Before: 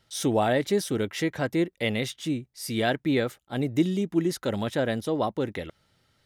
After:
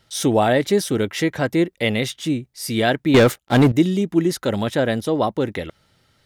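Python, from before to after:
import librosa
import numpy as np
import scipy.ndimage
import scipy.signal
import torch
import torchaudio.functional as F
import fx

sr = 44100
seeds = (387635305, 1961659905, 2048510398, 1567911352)

y = fx.leveller(x, sr, passes=3, at=(3.14, 3.72))
y = y * 10.0 ** (6.5 / 20.0)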